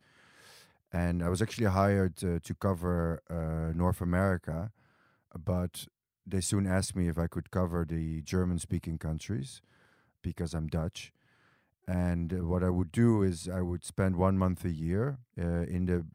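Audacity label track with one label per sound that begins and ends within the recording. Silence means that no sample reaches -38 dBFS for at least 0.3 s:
0.940000	4.670000	sound
5.350000	5.840000	sound
6.280000	9.540000	sound
10.240000	11.050000	sound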